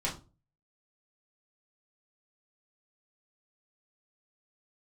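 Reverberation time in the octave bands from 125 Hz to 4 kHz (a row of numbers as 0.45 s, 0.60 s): 0.55 s, 0.40 s, 0.35 s, 0.30 s, 0.20 s, 0.25 s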